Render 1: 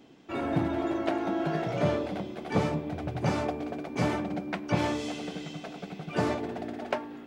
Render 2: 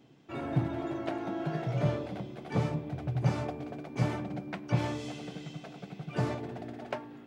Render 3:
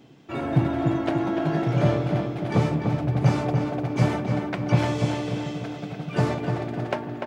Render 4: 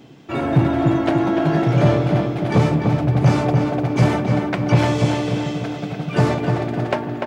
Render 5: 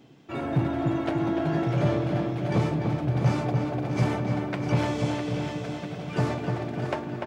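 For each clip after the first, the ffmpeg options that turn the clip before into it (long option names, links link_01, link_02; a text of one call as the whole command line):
ffmpeg -i in.wav -af "equalizer=frequency=130:width_type=o:width=0.35:gain=15,volume=-6dB" out.wav
ffmpeg -i in.wav -filter_complex "[0:a]asplit=2[link_01][link_02];[link_02]adelay=295,lowpass=frequency=3400:poles=1,volume=-5dB,asplit=2[link_03][link_04];[link_04]adelay=295,lowpass=frequency=3400:poles=1,volume=0.52,asplit=2[link_05][link_06];[link_06]adelay=295,lowpass=frequency=3400:poles=1,volume=0.52,asplit=2[link_07][link_08];[link_08]adelay=295,lowpass=frequency=3400:poles=1,volume=0.52,asplit=2[link_09][link_10];[link_10]adelay=295,lowpass=frequency=3400:poles=1,volume=0.52,asplit=2[link_11][link_12];[link_12]adelay=295,lowpass=frequency=3400:poles=1,volume=0.52,asplit=2[link_13][link_14];[link_14]adelay=295,lowpass=frequency=3400:poles=1,volume=0.52[link_15];[link_01][link_03][link_05][link_07][link_09][link_11][link_13][link_15]amix=inputs=8:normalize=0,volume=8dB" out.wav
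ffmpeg -i in.wav -af "aeval=exprs='0.473*sin(PI/2*1.41*val(0)/0.473)':channel_layout=same" out.wav
ffmpeg -i in.wav -af "aecho=1:1:653|1306|1959|2612|3265:0.355|0.149|0.0626|0.0263|0.011,volume=-9dB" out.wav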